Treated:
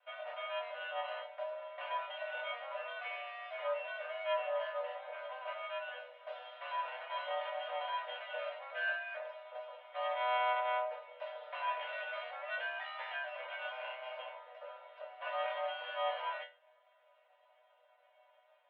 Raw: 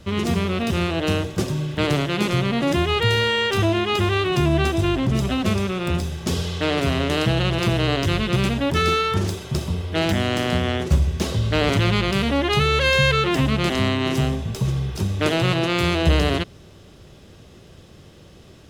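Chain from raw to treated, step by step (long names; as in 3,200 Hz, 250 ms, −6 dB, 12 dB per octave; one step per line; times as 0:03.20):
lower of the sound and its delayed copy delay 2.4 ms
resonators tuned to a chord B3 sus4, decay 0.31 s
single-sideband voice off tune +250 Hz 330–2,600 Hz
level +2.5 dB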